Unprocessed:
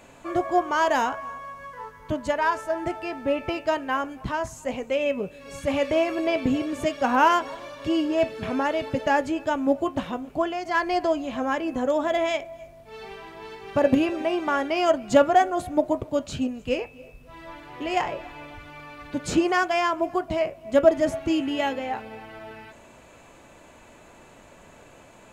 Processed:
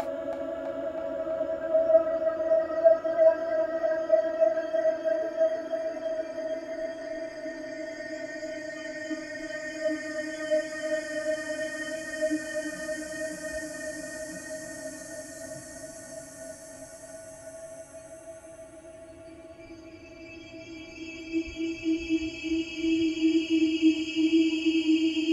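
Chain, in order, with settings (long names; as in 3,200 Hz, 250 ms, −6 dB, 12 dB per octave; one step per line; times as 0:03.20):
extreme stretch with random phases 48×, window 0.25 s, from 0:20.81
noise reduction from a noise print of the clip's start 15 dB
tape delay 326 ms, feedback 83%, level −7 dB, low-pass 5,200 Hz
level −1.5 dB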